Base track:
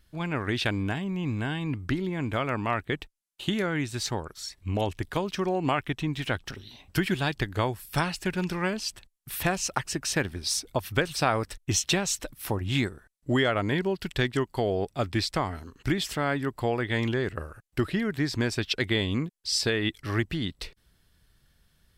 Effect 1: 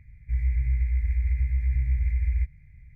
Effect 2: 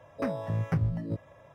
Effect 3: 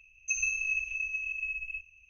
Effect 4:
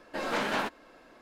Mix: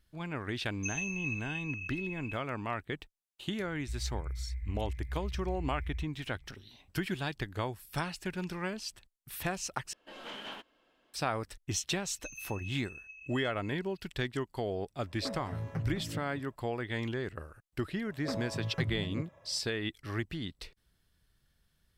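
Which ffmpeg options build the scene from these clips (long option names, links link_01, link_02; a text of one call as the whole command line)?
ffmpeg -i bed.wav -i cue0.wav -i cue1.wav -i cue2.wav -i cue3.wav -filter_complex "[3:a]asplit=2[link_01][link_02];[2:a]asplit=2[link_03][link_04];[0:a]volume=-8dB[link_05];[1:a]alimiter=limit=-23dB:level=0:latency=1:release=378[link_06];[4:a]equalizer=frequency=3100:width_type=o:width=0.32:gain=15[link_07];[link_03]aecho=1:1:211:0.335[link_08];[link_05]asplit=2[link_09][link_10];[link_09]atrim=end=9.934[link_11];[link_07]atrim=end=1.21,asetpts=PTS-STARTPTS,volume=-16dB[link_12];[link_10]atrim=start=11.136[link_13];[link_01]atrim=end=2.09,asetpts=PTS-STARTPTS,volume=-7dB,afade=type=in:duration=0.004:curve=hsin,afade=type=out:start_time=2.086:duration=0.004:curve=hsin,adelay=550[link_14];[link_06]atrim=end=2.95,asetpts=PTS-STARTPTS,volume=-8.5dB,afade=type=in:duration=0.004:curve=hsin,afade=type=out:start_time=2.946:duration=0.004:curve=hsin,adelay=3590[link_15];[link_02]atrim=end=2.09,asetpts=PTS-STARTPTS,volume=-16dB,afade=type=in:duration=0.004:curve=hsin,afade=type=out:start_time=2.086:duration=0.004:curve=hsin,adelay=11950[link_16];[link_08]atrim=end=1.54,asetpts=PTS-STARTPTS,volume=-8.5dB,afade=type=in:duration=0.1,afade=type=out:start_time=1.44:duration=0.1,adelay=15030[link_17];[link_04]atrim=end=1.54,asetpts=PTS-STARTPTS,volume=-6dB,afade=type=in:duration=0.004:curve=hsin,afade=type=out:start_time=1.536:duration=0.004:curve=hsin,adelay=18060[link_18];[link_11][link_12]acrossfade=duration=0.004:curve1=hsin:curve2=hsin[link_19];[link_19][link_13]acrossfade=duration=0.004:curve1=hsin:curve2=hsin[link_20];[link_20][link_14][link_15][link_16][link_17][link_18]amix=inputs=6:normalize=0" out.wav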